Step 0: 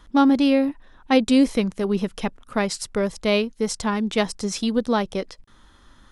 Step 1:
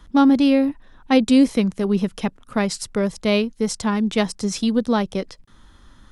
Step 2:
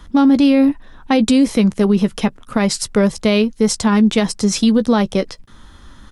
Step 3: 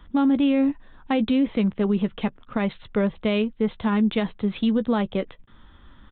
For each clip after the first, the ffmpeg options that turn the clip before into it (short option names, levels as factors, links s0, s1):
-filter_complex "[0:a]bass=f=250:g=6,treble=f=4000:g=1,acrossover=split=100[s0][s1];[s0]acompressor=threshold=0.00708:ratio=6[s2];[s2][s1]amix=inputs=2:normalize=0"
-filter_complex "[0:a]asplit=2[s0][s1];[s1]adelay=14,volume=0.2[s2];[s0][s2]amix=inputs=2:normalize=0,alimiter=level_in=4.22:limit=0.891:release=50:level=0:latency=1,volume=0.562"
-af "aresample=8000,aresample=44100,volume=0.398"